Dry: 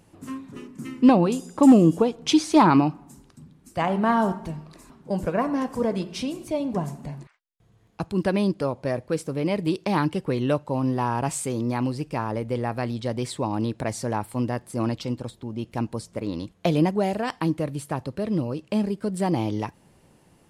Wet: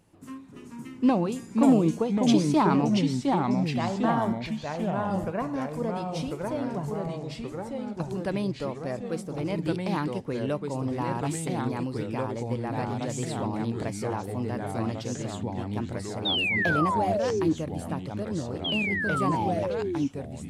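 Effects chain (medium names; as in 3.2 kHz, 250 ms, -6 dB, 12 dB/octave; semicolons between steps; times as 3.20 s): painted sound fall, 16.25–17.53 s, 300–3800 Hz -20 dBFS; ever faster or slower copies 401 ms, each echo -2 st, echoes 3; trim -6.5 dB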